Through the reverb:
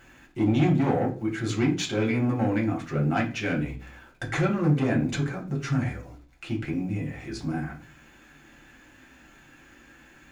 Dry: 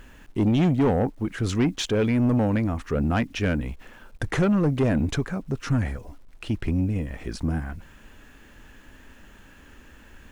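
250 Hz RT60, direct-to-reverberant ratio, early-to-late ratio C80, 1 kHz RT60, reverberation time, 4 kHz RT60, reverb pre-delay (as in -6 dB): 0.50 s, -3.0 dB, 16.5 dB, 0.35 s, 0.40 s, 0.40 s, 3 ms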